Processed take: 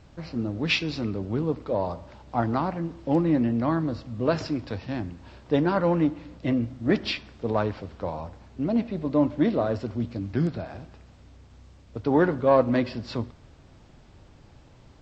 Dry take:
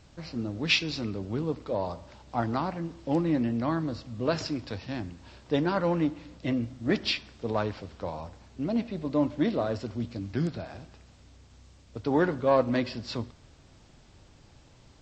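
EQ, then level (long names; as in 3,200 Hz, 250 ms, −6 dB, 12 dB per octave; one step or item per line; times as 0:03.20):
high-shelf EQ 3,300 Hz −10 dB
+4.0 dB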